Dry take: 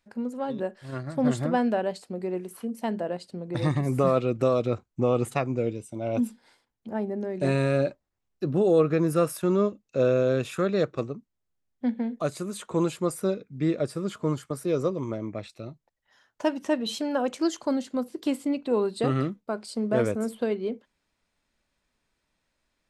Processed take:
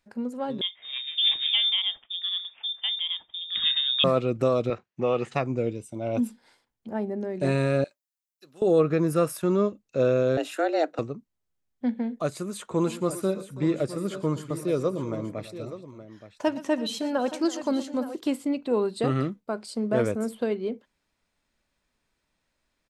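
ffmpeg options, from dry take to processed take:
-filter_complex "[0:a]asettb=1/sr,asplit=3[s0][s1][s2];[s0]atrim=end=0.614[s3];[s1]atrim=start=0.61:end=4.04,asetpts=PTS-STARTPTS,afade=t=in:d=0.004:c=qsin,afade=t=out:st=3.426:d=0.004:c=qsin,lowpass=f=3200:t=q:w=0.5098,lowpass=f=3200:t=q:w=0.6013,lowpass=f=3200:t=q:w=0.9,lowpass=f=3200:t=q:w=2.563,afreqshift=-3800[s4];[s2]atrim=start=4.036[s5];[s3][s4]acrossfade=d=0.004:c1=hsin:c2=qsin[s6];[s6][s5]acrossfade=d=0.004:c1=qsin:c2=hsin,asettb=1/sr,asplit=3[s7][s8][s9];[s7]atrim=end=4.704[s10];[s8]atrim=start=4.7:end=5.34,asetpts=PTS-STARTPTS,afade=t=in:d=0.004:c=qsin,afade=t=out:st=0.636:d=0.004:c=qsin,highpass=180,equalizer=f=280:t=q:w=4:g=-9,equalizer=f=1800:t=q:w=4:g=9,equalizer=f=2700:t=q:w=4:g=6,lowpass=f=6000:w=0.5412,lowpass=f=6000:w=1.3066[s11];[s9]atrim=start=5.336[s12];[s10][s11]acrossfade=d=0.004:c1=hsin:c2=qsin[s13];[s13][s12]acrossfade=d=0.004:c1=qsin:c2=hsin,asettb=1/sr,asplit=3[s14][s15][s16];[s14]atrim=end=7.844[s17];[s15]atrim=start=7.84:end=8.62,asetpts=PTS-STARTPTS,afade=t=in:d=0.004:c=qsin,afade=t=out:st=0.776:d=0.004:c=qsin,aderivative[s18];[s16]atrim=start=8.616[s19];[s17][s18]acrossfade=d=0.004:c1=hsin:c2=qsin[s20];[s20][s19]acrossfade=d=0.004:c1=qsin:c2=hsin,asettb=1/sr,asplit=3[s21][s22][s23];[s21]atrim=end=10.374[s24];[s22]atrim=start=10.37:end=10.99,asetpts=PTS-STARTPTS,afade=t=in:d=0.004:c=qsin,afade=t=out:st=0.616:d=0.004:c=qsin,afreqshift=160[s25];[s23]atrim=start=10.986[s26];[s24][s25]acrossfade=d=0.004:c1=hsin:c2=qsin[s27];[s27][s26]acrossfade=d=0.004:c1=qsin:c2=hsin,asplit=3[s28][s29][s30];[s28]afade=t=out:st=12.81:d=0.02[s31];[s29]aecho=1:1:118|329|872:0.15|0.133|0.224,afade=t=in:st=12.81:d=0.02,afade=t=out:st=18.19:d=0.02[s32];[s30]afade=t=in:st=18.19:d=0.02[s33];[s31][s32][s33]amix=inputs=3:normalize=0"

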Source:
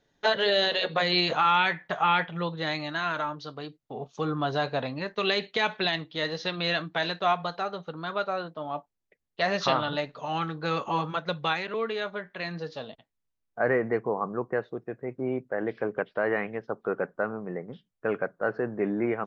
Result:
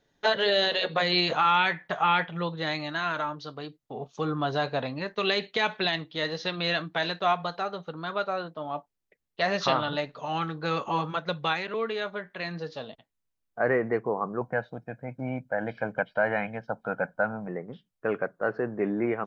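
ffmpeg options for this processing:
-filter_complex "[0:a]asettb=1/sr,asplit=3[s0][s1][s2];[s0]atrim=end=14.414[s3];[s1]atrim=start=14.41:end=17.48,asetpts=PTS-STARTPTS,afade=t=in:d=0.004:c=qsin,afade=t=out:st=3.066:d=0.004:c=qsin,aecho=1:1:1.3:0.85,atrim=end_sample=135387[s4];[s2]atrim=start=17.476[s5];[s3][s4]acrossfade=d=0.004:c1=hsin:c2=qsin[s6];[s6][s5]acrossfade=d=0.004:c1=qsin:c2=hsin"

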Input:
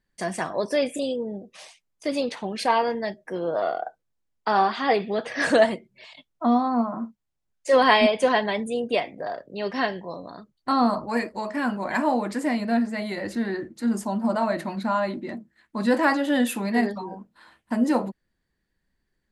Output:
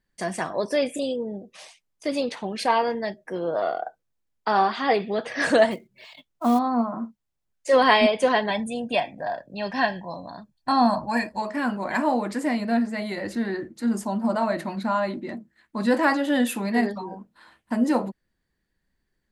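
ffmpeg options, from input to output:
-filter_complex "[0:a]asettb=1/sr,asplit=3[s0][s1][s2];[s0]atrim=end=5.714[s3];[s1]atrim=start=5.71:end=6.59,asetpts=PTS-STARTPTS,afade=t=in:d=0.004:c=qsin,afade=t=out:st=0.876:d=0.004:c=qsin,acrusher=bits=6:mode=log:mix=0:aa=0.000001[s4];[s2]atrim=start=6.586[s5];[s3][s4]acrossfade=d=0.004:c1=hsin:c2=qsin[s6];[s6][s5]acrossfade=d=0.004:c1=qsin:c2=hsin,asettb=1/sr,asplit=3[s7][s8][s9];[s7]atrim=end=8.504[s10];[s8]atrim=start=8.5:end=11.42,asetpts=PTS-STARTPTS,afade=t=in:d=0.004:c=qsin,afade=t=out:st=2.916:d=0.004:c=qsin,aecho=1:1:1.2:0.65,atrim=end_sample=128772[s11];[s9]atrim=start=11.416[s12];[s10][s11]acrossfade=d=0.004:c1=hsin:c2=qsin[s13];[s13][s12]acrossfade=d=0.004:c1=qsin:c2=hsin"

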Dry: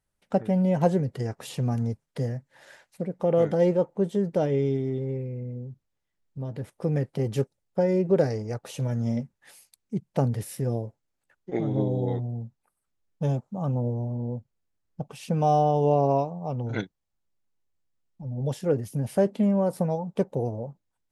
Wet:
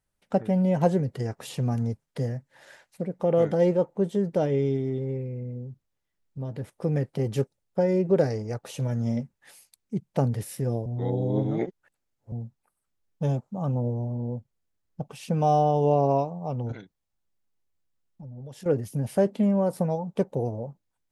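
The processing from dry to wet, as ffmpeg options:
-filter_complex "[0:a]asettb=1/sr,asplit=3[s0][s1][s2];[s0]atrim=end=16.724[s3];[s1]atrim=start=16.72:end=18.66,asetpts=PTS-STARTPTS,afade=t=in:d=0.004:c=qsin,afade=t=out:st=1.936:d=0.004:c=qsin,acompressor=threshold=0.0112:ratio=5:attack=3.2:release=140:knee=1:detection=peak[s4];[s2]atrim=start=18.656[s5];[s3][s4]acrossfade=d=0.004:c1=hsin:c2=qsin[s6];[s6][s5]acrossfade=d=0.004:c1=qsin:c2=hsin,asplit=3[s7][s8][s9];[s7]atrim=end=10.862[s10];[s8]atrim=start=10.858:end=12.322,asetpts=PTS-STARTPTS,areverse[s11];[s9]atrim=start=12.318[s12];[s10][s11]acrossfade=d=0.004:c1=hsin:c2=hsin[s13];[s13][s12]acrossfade=d=0.004:c1=hsin:c2=hsin"

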